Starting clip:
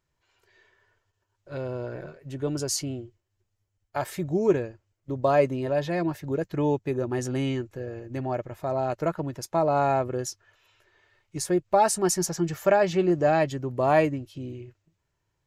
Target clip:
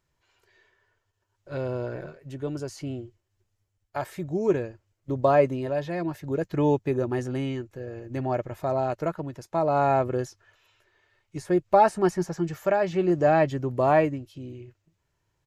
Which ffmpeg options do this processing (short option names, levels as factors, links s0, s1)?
-filter_complex "[0:a]tremolo=f=0.59:d=0.46,aresample=32000,aresample=44100,acrossover=split=2600[s0][s1];[s1]acompressor=threshold=0.00398:ratio=4:attack=1:release=60[s2];[s0][s2]amix=inputs=2:normalize=0,volume=1.33"